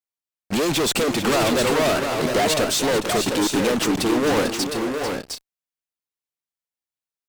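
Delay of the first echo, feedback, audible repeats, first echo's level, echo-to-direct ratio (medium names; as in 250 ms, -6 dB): 445 ms, no regular repeats, 3, -10.0 dB, -3.5 dB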